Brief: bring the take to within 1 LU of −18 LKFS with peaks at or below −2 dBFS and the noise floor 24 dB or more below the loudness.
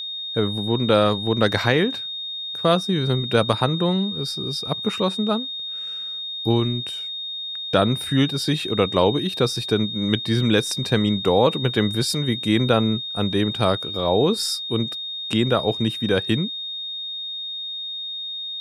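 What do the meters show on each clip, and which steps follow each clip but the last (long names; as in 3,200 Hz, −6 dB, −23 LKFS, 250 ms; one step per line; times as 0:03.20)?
interfering tone 3,700 Hz; level of the tone −28 dBFS; integrated loudness −22.0 LKFS; sample peak −3.0 dBFS; target loudness −18.0 LKFS
→ notch filter 3,700 Hz, Q 30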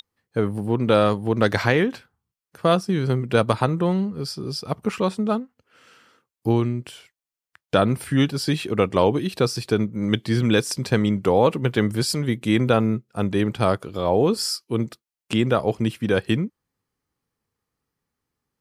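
interfering tone none found; integrated loudness −22.5 LKFS; sample peak −3.5 dBFS; target loudness −18.0 LKFS
→ level +4.5 dB
brickwall limiter −2 dBFS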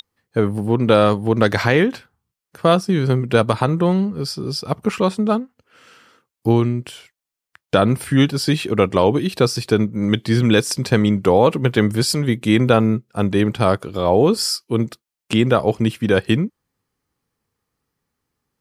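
integrated loudness −18.0 LKFS; sample peak −2.0 dBFS; background noise floor −86 dBFS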